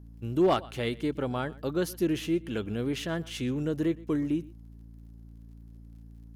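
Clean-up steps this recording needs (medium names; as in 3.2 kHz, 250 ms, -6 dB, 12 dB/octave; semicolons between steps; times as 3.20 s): clip repair -17 dBFS; de-click; de-hum 56.4 Hz, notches 5; inverse comb 121 ms -21.5 dB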